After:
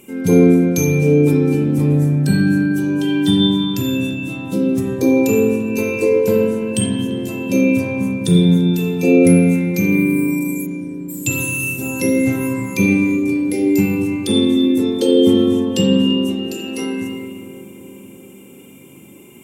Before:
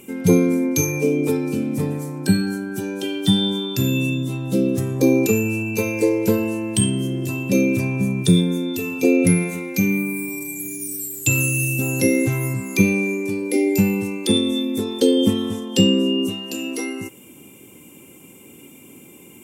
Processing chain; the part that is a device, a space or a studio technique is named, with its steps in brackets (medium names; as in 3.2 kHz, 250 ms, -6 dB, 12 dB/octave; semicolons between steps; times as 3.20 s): 10.65–11.08 s: low-pass 3.5 kHz -> 1.3 kHz 12 dB/octave; dub delay into a spring reverb (filtered feedback delay 341 ms, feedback 74%, low-pass 1.2 kHz, level -14 dB; spring tank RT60 1.5 s, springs 34/41 ms, chirp 50 ms, DRR -0.5 dB); trim -1.5 dB